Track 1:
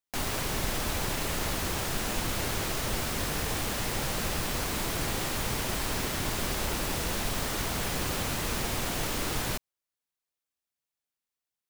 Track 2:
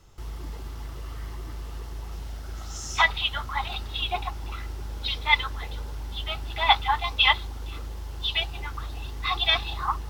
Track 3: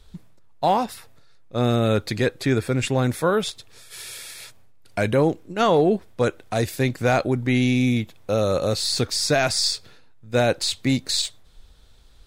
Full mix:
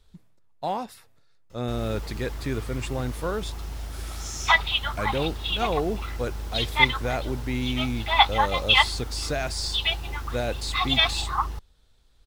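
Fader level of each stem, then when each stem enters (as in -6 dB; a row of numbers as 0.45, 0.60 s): -19.0, +1.5, -9.0 dB; 1.65, 1.50, 0.00 s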